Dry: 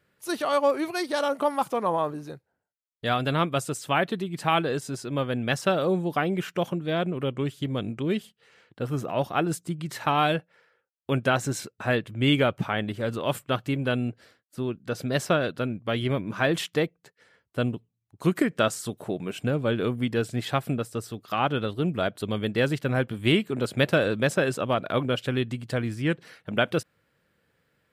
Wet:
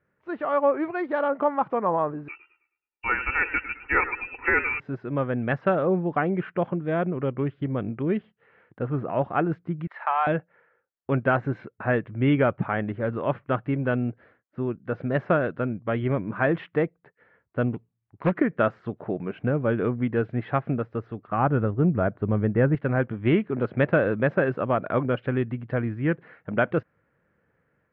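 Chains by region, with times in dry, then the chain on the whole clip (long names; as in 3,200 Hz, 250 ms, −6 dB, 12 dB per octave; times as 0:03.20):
0:02.28–0:04.80: comb filter 2.1 ms, depth 97% + voice inversion scrambler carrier 2,800 Hz + feedback echo with a swinging delay time 106 ms, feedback 34%, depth 78 cents, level −13.5 dB
0:09.87–0:10.27: high-pass filter 680 Hz 24 dB per octave + de-essing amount 80%
0:17.71–0:18.35: phase distortion by the signal itself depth 0.74 ms + high-shelf EQ 3,600 Hz +10 dB
0:21.27–0:22.75: low-pass filter 1,900 Hz + low-shelf EQ 140 Hz +11 dB
whole clip: inverse Chebyshev low-pass filter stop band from 9,900 Hz, stop band 80 dB; automatic gain control gain up to 4.5 dB; level −3 dB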